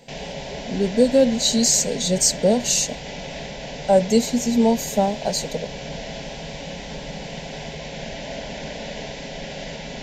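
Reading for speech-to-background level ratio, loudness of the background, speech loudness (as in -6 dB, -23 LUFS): 13.5 dB, -33.0 LUFS, -19.5 LUFS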